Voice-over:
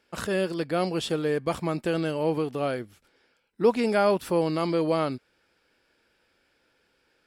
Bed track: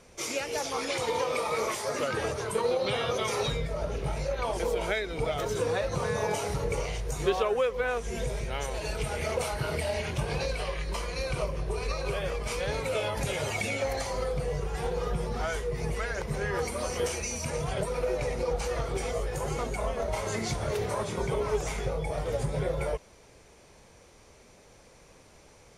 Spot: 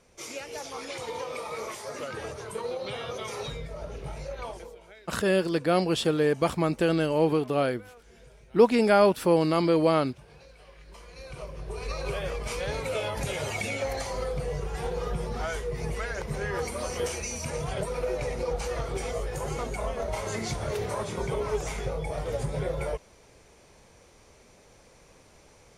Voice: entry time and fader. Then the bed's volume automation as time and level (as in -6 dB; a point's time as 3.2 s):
4.95 s, +2.5 dB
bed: 4.47 s -6 dB
4.81 s -21.5 dB
10.54 s -21.5 dB
12.01 s -0.5 dB